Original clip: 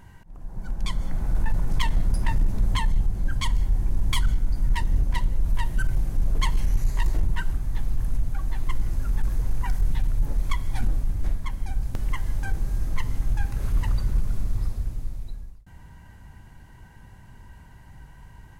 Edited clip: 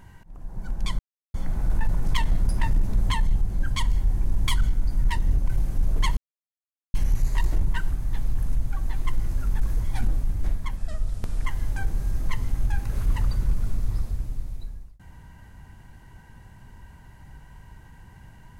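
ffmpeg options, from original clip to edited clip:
ffmpeg -i in.wav -filter_complex "[0:a]asplit=7[link_01][link_02][link_03][link_04][link_05][link_06][link_07];[link_01]atrim=end=0.99,asetpts=PTS-STARTPTS,afade=type=out:start_time=0.986:duration=0.004:curve=hsin,apad=pad_dur=0.35[link_08];[link_02]atrim=start=0.99:end=5.132,asetpts=PTS-STARTPTS,afade=type=in:duration=0.004:curve=hsin[link_09];[link_03]atrim=start=5.868:end=6.56,asetpts=PTS-STARTPTS,afade=type=out:start_time=0.688:duration=0.004:curve=hsin,apad=pad_dur=0.77[link_10];[link_04]atrim=start=6.56:end=9.462,asetpts=PTS-STARTPTS,afade=type=in:duration=0.004:curve=hsin[link_11];[link_05]atrim=start=10.638:end=11.574[link_12];[link_06]atrim=start=11.57:end=12.13,asetpts=PTS-STARTPTS,asetrate=35721,aresample=44100[link_13];[link_07]atrim=start=12.126[link_14];[link_08][link_09]concat=n=2:v=0:a=1[link_15];[link_10][link_11]concat=n=2:v=0:a=1[link_16];[link_15][link_16]acrossfade=duration=0.004:curve1=hsin:curve2=hsin[link_17];[link_17][link_12]acrossfade=duration=0.004:curve1=hsin:curve2=hsin[link_18];[link_18][link_13]acrossfade=duration=0.004:curve1=hsin:curve2=hsin[link_19];[link_19][link_14]acrossfade=duration=0.004:curve1=hsin:curve2=hsin" out.wav

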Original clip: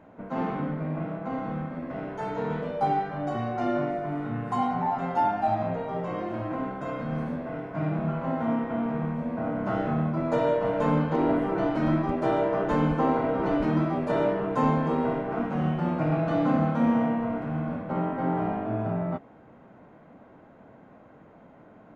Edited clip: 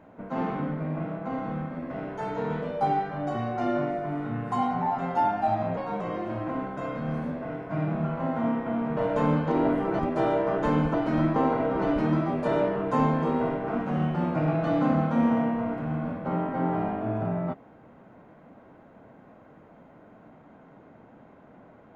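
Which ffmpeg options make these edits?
ffmpeg -i in.wav -filter_complex "[0:a]asplit=7[link_01][link_02][link_03][link_04][link_05][link_06][link_07];[link_01]atrim=end=5.774[link_08];[link_02]atrim=start=5.77:end=6.05,asetpts=PTS-STARTPTS,asetrate=51597,aresample=44100[link_09];[link_03]atrim=start=6.046:end=9.012[link_10];[link_04]atrim=start=10.608:end=11.632[link_11];[link_05]atrim=start=12.048:end=13.002[link_12];[link_06]atrim=start=11.628:end=12.052[link_13];[link_07]atrim=start=12.998[link_14];[link_08][link_09]acrossfade=duration=0.004:curve1=hsin:curve2=hsin[link_15];[link_15][link_10]acrossfade=duration=0.004:curve1=hsin:curve2=hsin[link_16];[link_16][link_11]acrossfade=duration=0.004:curve1=hsin:curve2=hsin[link_17];[link_17][link_12]acrossfade=duration=0.004:curve1=hsin:curve2=hsin[link_18];[link_18][link_13]acrossfade=duration=0.004:curve1=hsin:curve2=hsin[link_19];[link_19][link_14]acrossfade=duration=0.004:curve1=hsin:curve2=hsin" out.wav

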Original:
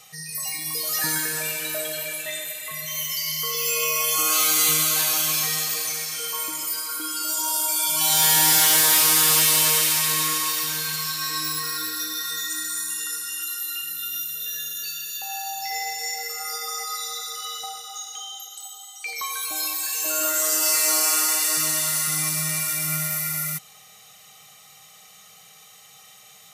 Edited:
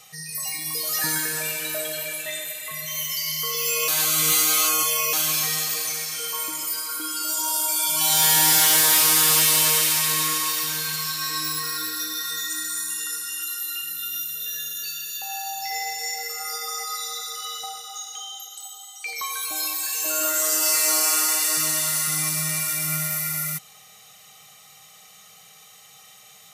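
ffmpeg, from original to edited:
ffmpeg -i in.wav -filter_complex "[0:a]asplit=3[link_01][link_02][link_03];[link_01]atrim=end=3.882[link_04];[link_02]atrim=start=3.878:end=5.132,asetpts=PTS-STARTPTS,areverse[link_05];[link_03]atrim=start=5.128[link_06];[link_04][link_05]acrossfade=duration=0.004:curve1=hsin:curve2=hsin[link_07];[link_07][link_06]acrossfade=duration=0.004:curve1=hsin:curve2=hsin" out.wav

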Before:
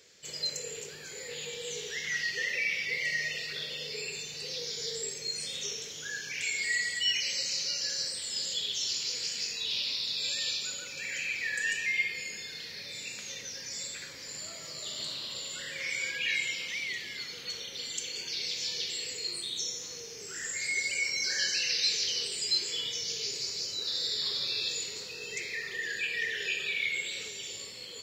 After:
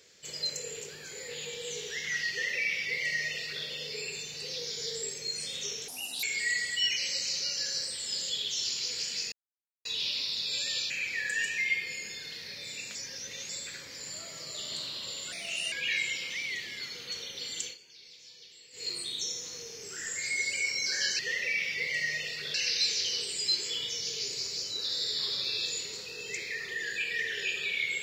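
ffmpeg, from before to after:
ffmpeg -i in.wav -filter_complex "[0:a]asplit=13[link_01][link_02][link_03][link_04][link_05][link_06][link_07][link_08][link_09][link_10][link_11][link_12][link_13];[link_01]atrim=end=5.884[link_14];[link_02]atrim=start=5.88:end=6.47,asetpts=PTS-STARTPTS,asetrate=74088,aresample=44100[link_15];[link_03]atrim=start=6.466:end=9.56,asetpts=PTS-STARTPTS,afade=type=out:start_time=3.09:duration=0.004:curve=hsin,apad=pad_dur=0.53[link_16];[link_04]atrim=start=9.56:end=10.612,asetpts=PTS-STARTPTS,afade=type=in:duration=0.004:curve=hsin[link_17];[link_05]atrim=start=11.178:end=13.232[link_18];[link_06]atrim=start=13.228:end=13.772,asetpts=PTS-STARTPTS,areverse[link_19];[link_07]atrim=start=13.768:end=15.604[link_20];[link_08]atrim=start=15.6:end=16.1,asetpts=PTS-STARTPTS,asetrate=55125,aresample=44100[link_21];[link_09]atrim=start=16.096:end=18.16,asetpts=PTS-STARTPTS,afade=type=out:start_time=1.924:duration=0.14:silence=0.125893[link_22];[link_10]atrim=start=18.16:end=19.1,asetpts=PTS-STARTPTS,volume=-18dB[link_23];[link_11]atrim=start=19.1:end=21.572,asetpts=PTS-STARTPTS,afade=type=in:duration=0.14:silence=0.125893[link_24];[link_12]atrim=start=2.298:end=3.652[link_25];[link_13]atrim=start=21.568[link_26];[link_14][link_15]acrossfade=duration=0.004:curve1=hsin:curve2=hsin[link_27];[link_16][link_17]concat=n=2:v=0:a=1[link_28];[link_27][link_28]acrossfade=duration=0.004:curve1=hsin:curve2=hsin[link_29];[link_29][link_18]acrossfade=duration=0.004:curve1=hsin:curve2=hsin[link_30];[link_30][link_19]acrossfade=duration=0.004:curve1=hsin:curve2=hsin[link_31];[link_31][link_20]acrossfade=duration=0.004:curve1=hsin:curve2=hsin[link_32];[link_32][link_21]acrossfade=duration=0.004:curve1=hsin:curve2=hsin[link_33];[link_22][link_23][link_24]concat=n=3:v=0:a=1[link_34];[link_33][link_34]acrossfade=duration=0.004:curve1=hsin:curve2=hsin[link_35];[link_35][link_25]acrossfade=duration=0.004:curve1=hsin:curve2=hsin[link_36];[link_36][link_26]acrossfade=duration=0.004:curve1=hsin:curve2=hsin" out.wav

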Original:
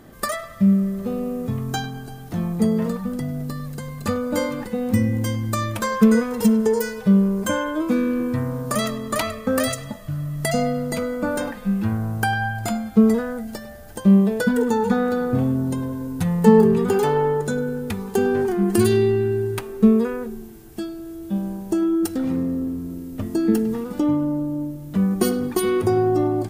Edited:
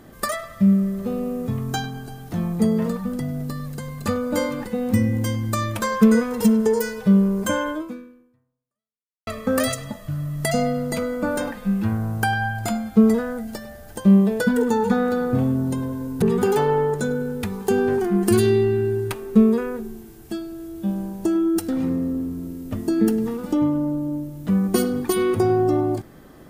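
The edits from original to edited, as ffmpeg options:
ffmpeg -i in.wav -filter_complex "[0:a]asplit=3[link_01][link_02][link_03];[link_01]atrim=end=9.27,asetpts=PTS-STARTPTS,afade=type=out:start_time=7.71:duration=1.56:curve=exp[link_04];[link_02]atrim=start=9.27:end=16.222,asetpts=PTS-STARTPTS,afade=type=in:duration=0.004:curve=hsin[link_05];[link_03]atrim=start=16.688[link_06];[link_04][link_05]concat=n=2:v=0:a=1[link_07];[link_07][link_06]acrossfade=duration=0.004:curve1=hsin:curve2=hsin" out.wav

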